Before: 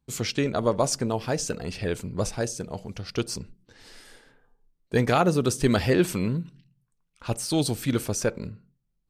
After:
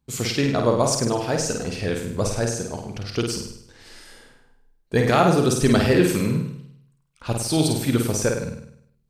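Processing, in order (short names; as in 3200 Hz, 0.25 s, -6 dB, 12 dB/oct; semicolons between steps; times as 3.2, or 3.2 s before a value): flutter echo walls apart 8.7 m, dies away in 0.69 s; gain +2.5 dB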